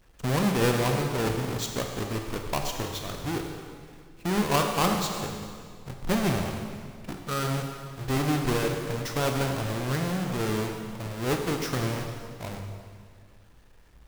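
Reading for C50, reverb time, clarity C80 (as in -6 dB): 4.0 dB, 2.0 s, 5.0 dB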